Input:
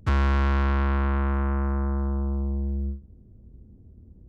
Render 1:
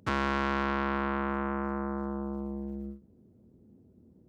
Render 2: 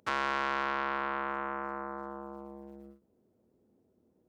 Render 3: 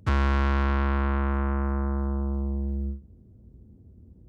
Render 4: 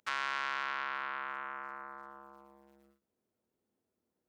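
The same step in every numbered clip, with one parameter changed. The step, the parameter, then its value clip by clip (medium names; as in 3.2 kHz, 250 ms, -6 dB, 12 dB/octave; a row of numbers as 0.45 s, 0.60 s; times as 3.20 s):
high-pass, cutoff frequency: 200 Hz, 540 Hz, 57 Hz, 1.4 kHz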